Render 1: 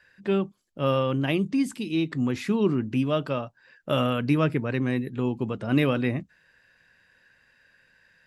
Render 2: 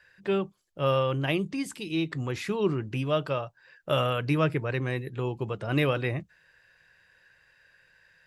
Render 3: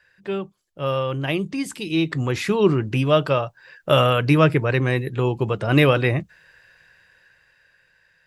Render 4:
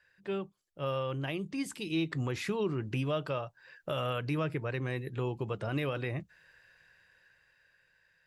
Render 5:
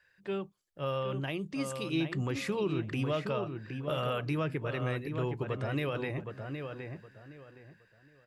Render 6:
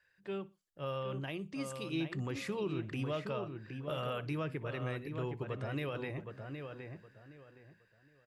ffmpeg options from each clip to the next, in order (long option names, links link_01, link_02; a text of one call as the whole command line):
ffmpeg -i in.wav -af "equalizer=frequency=240:width=3.4:gain=-14.5" out.wav
ffmpeg -i in.wav -af "dynaudnorm=framelen=310:gausssize=11:maxgain=11.5dB" out.wav
ffmpeg -i in.wav -af "alimiter=limit=-14dB:level=0:latency=1:release=306,volume=-8.5dB" out.wav
ffmpeg -i in.wav -filter_complex "[0:a]asplit=2[link_01][link_02];[link_02]adelay=767,lowpass=frequency=2500:poles=1,volume=-6dB,asplit=2[link_03][link_04];[link_04]adelay=767,lowpass=frequency=2500:poles=1,volume=0.26,asplit=2[link_05][link_06];[link_06]adelay=767,lowpass=frequency=2500:poles=1,volume=0.26[link_07];[link_01][link_03][link_05][link_07]amix=inputs=4:normalize=0" out.wav
ffmpeg -i in.wav -af "aecho=1:1:61|122:0.0841|0.0261,volume=-5dB" out.wav